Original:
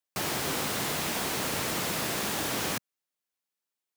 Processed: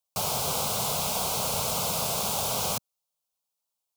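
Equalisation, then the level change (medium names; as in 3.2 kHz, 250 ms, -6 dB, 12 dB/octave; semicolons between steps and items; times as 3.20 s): static phaser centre 750 Hz, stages 4; +5.0 dB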